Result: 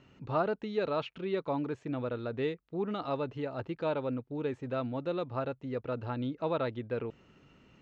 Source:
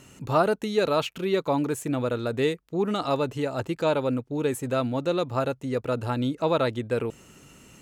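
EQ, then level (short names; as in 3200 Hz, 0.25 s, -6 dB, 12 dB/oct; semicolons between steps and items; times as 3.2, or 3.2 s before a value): Bessel low-pass 3100 Hz, order 6; -8.0 dB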